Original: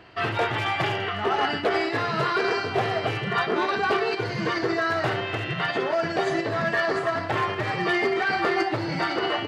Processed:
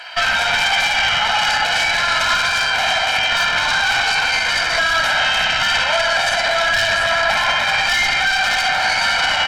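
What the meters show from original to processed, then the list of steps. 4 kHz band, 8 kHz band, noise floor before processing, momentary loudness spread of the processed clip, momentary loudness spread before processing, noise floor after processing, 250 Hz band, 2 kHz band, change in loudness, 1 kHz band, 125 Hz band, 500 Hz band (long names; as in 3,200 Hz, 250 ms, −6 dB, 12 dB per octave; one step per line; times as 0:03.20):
+16.5 dB, +22.0 dB, −31 dBFS, 1 LU, 3 LU, −19 dBFS, −9.5 dB, +12.0 dB, +9.5 dB, +7.0 dB, −4.5 dB, 0.0 dB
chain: flanger 1.5 Hz, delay 9.2 ms, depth 8.9 ms, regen −50%
spring reverb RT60 1.7 s, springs 58 ms, chirp 30 ms, DRR 1.5 dB
sine wavefolder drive 6 dB, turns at −16 dBFS
high-pass filter 1,000 Hz 12 dB per octave
spectral tilt +2 dB per octave
harmonic generator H 4 −16 dB, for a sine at −9 dBFS
comb filter 1.3 ms, depth 83%
boost into a limiter +15.5 dB
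level −6 dB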